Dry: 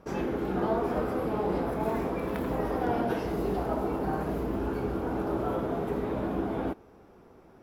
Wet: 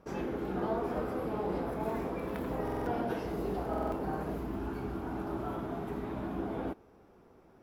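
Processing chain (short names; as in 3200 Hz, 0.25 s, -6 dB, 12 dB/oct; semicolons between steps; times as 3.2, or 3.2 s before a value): 4.36–6.4 bell 500 Hz -10.5 dB 0.36 oct; stuck buffer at 2.63/3.69, samples 2048, times 4; gain -5 dB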